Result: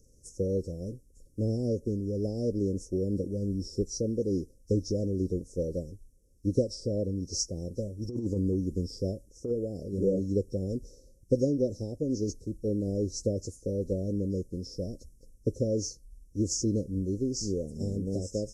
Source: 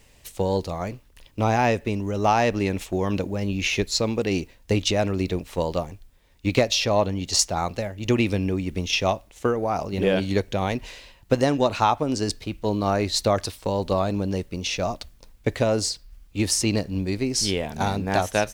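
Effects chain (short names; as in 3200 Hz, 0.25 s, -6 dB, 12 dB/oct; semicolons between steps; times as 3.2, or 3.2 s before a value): nonlinear frequency compression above 3800 Hz 1.5:1; Chebyshev band-stop 530–5500 Hz, order 5; 7.77–9.51 negative-ratio compressor -24 dBFS, ratio -0.5; gain -4 dB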